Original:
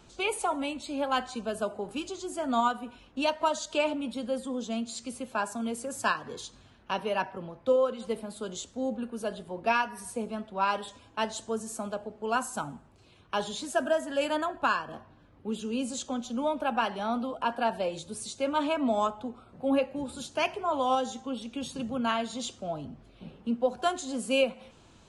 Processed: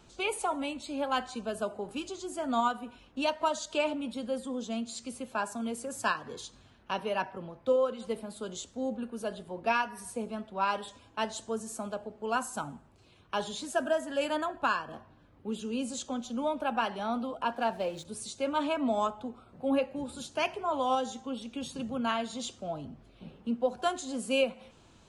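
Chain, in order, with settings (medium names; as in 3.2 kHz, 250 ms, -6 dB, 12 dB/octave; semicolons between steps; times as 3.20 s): 17.53–18.05 s: hysteresis with a dead band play -45.5 dBFS; trim -2 dB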